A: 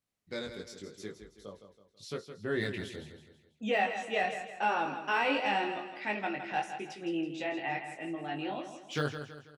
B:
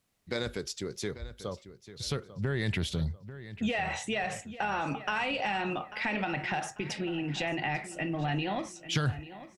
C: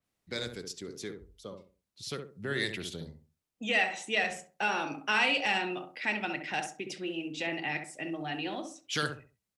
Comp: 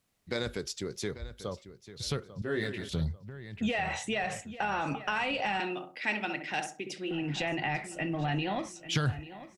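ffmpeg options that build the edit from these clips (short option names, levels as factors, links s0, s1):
-filter_complex "[1:a]asplit=3[s0][s1][s2];[s0]atrim=end=2.422[s3];[0:a]atrim=start=2.418:end=2.892[s4];[s1]atrim=start=2.888:end=5.602[s5];[2:a]atrim=start=5.598:end=7.112[s6];[s2]atrim=start=7.108[s7];[s3][s4]acrossfade=d=0.004:c1=hsin:c2=hsin[s8];[s8][s5]acrossfade=d=0.004:c1=hsin:c2=hsin[s9];[s9][s6]acrossfade=d=0.004:c1=hsin:c2=hsin[s10];[s10][s7]acrossfade=d=0.004:c1=hsin:c2=hsin"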